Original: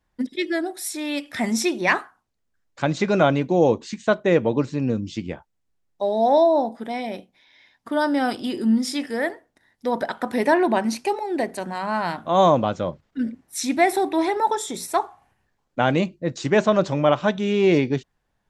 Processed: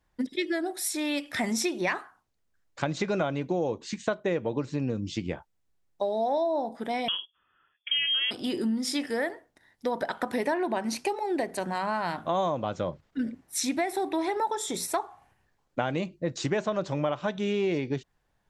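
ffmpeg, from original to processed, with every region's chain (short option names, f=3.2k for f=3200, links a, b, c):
-filter_complex "[0:a]asettb=1/sr,asplit=3[a][b][c];[a]atrim=end=7.084[d];[b]atrim=start=7.08:end=8.31,asetpts=PTS-STARTPTS,afade=t=in:d=0.004:c=qsin,afade=t=out:st=1.226:d=0.004:c=qsin,agate=range=-12dB:threshold=-49dB:ratio=16:release=100:detection=peak,lowshelf=f=210:g=11,lowpass=f=3k:t=q:w=0.5098,lowpass=f=3k:t=q:w=0.6013,lowpass=f=3k:t=q:w=0.9,lowpass=f=3k:t=q:w=2.563,afreqshift=-3500[e];[c]atrim=start=8.306[f];[d][e]acrossfade=d=0.004:c1=hsin:c2=qsin[g];[g][f]acrossfade=d=0.004:c1=qsin:c2=hsin,equalizer=f=230:t=o:w=0.38:g=-3.5,acompressor=threshold=-25dB:ratio=6"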